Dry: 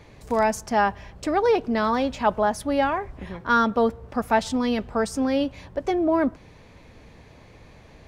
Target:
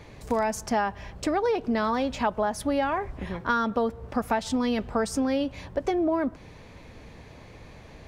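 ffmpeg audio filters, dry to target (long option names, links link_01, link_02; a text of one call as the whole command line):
ffmpeg -i in.wav -af "acompressor=threshold=-24dB:ratio=6,volume=2dB" out.wav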